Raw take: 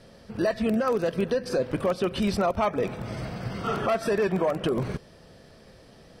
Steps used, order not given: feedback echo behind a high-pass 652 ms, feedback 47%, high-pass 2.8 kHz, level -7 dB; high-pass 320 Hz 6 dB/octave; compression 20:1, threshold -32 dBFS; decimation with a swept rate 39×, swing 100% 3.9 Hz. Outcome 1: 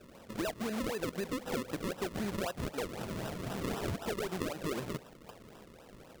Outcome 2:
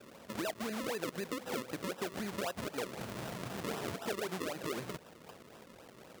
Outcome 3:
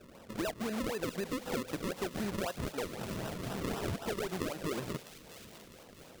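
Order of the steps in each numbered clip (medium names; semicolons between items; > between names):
high-pass > compression > feedback echo behind a high-pass > decimation with a swept rate; compression > feedback echo behind a high-pass > decimation with a swept rate > high-pass; high-pass > compression > decimation with a swept rate > feedback echo behind a high-pass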